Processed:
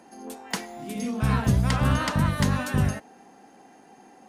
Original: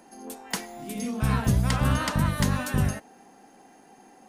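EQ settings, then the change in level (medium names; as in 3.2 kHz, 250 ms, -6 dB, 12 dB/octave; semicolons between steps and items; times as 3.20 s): high-pass 48 Hz; treble shelf 8.7 kHz -8 dB; +1.5 dB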